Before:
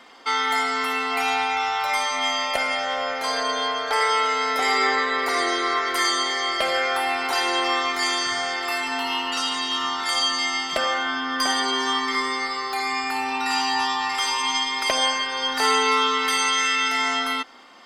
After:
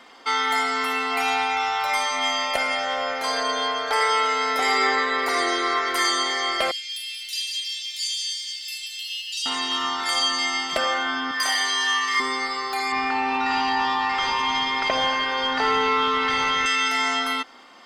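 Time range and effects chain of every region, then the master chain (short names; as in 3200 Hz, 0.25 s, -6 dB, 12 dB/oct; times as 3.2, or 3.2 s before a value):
6.71–9.46 steep high-pass 2900 Hz + lo-fi delay 0.182 s, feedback 55%, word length 9-bit, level -8.5 dB
11.31–12.2 HPF 1100 Hz 6 dB/oct + flutter echo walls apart 5.1 m, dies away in 0.65 s
12.92–16.66 CVSD 64 kbps + air absorption 200 m + fast leveller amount 50%
whole clip: dry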